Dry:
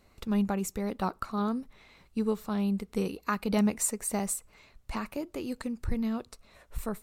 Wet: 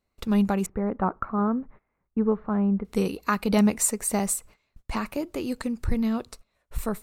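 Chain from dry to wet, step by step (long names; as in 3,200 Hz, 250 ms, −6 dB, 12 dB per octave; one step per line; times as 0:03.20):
0:00.66–0:02.85: low-pass filter 1,700 Hz 24 dB per octave
noise gate −51 dBFS, range −22 dB
level +5.5 dB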